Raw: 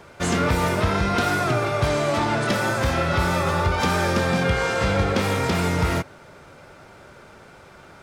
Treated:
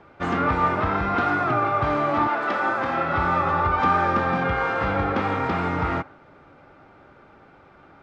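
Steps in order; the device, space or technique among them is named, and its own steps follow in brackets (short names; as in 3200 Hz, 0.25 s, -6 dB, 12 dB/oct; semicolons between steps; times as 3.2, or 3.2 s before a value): inside a cardboard box (LPF 2700 Hz 12 dB/oct; small resonant body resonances 290/800/1200 Hz, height 8 dB); 2.27–3.13 HPF 460 Hz -> 130 Hz 12 dB/oct; dynamic EQ 1200 Hz, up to +7 dB, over -36 dBFS, Q 0.82; gain -6 dB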